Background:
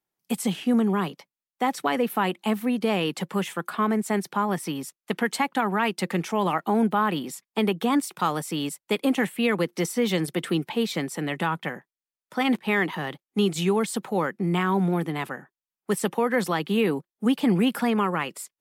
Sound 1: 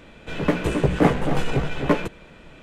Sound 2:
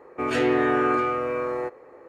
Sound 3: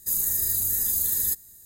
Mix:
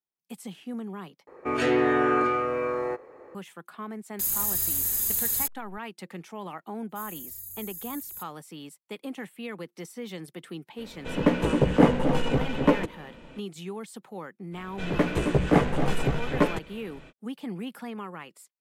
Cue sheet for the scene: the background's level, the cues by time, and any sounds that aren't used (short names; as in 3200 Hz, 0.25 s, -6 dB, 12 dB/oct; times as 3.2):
background -14 dB
1.27 replace with 2 -1 dB
4.13 add 3 -2 dB + level-crossing sampler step -31.5 dBFS
6.89 add 3 -15.5 dB + spectral expander 1.5:1
10.78 add 1 -4.5 dB + small resonant body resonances 250/510/910/2900 Hz, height 8 dB, ringing for 35 ms
14.51 add 1 -3 dB, fades 0.05 s